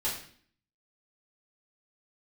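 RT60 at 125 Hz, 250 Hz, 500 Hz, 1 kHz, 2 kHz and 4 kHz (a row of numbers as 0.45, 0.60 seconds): 0.70, 0.70, 0.55, 0.50, 0.55, 0.50 seconds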